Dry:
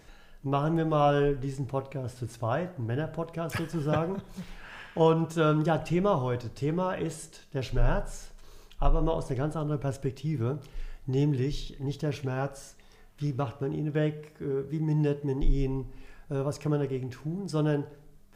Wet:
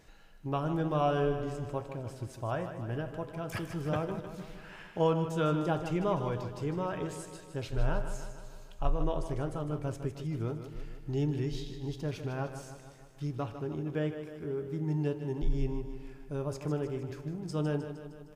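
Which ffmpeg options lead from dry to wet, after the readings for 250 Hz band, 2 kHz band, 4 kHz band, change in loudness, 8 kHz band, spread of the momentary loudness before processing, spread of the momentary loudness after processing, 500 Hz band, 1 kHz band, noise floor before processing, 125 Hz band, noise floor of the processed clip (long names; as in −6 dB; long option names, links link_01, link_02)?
−4.5 dB, −4.5 dB, −4.5 dB, −4.5 dB, −4.5 dB, 12 LU, 14 LU, −4.5 dB, −4.5 dB, −54 dBFS, −4.5 dB, −52 dBFS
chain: -af "aecho=1:1:154|308|462|616|770|924|1078:0.316|0.19|0.114|0.0683|0.041|0.0246|0.0148,volume=-5dB"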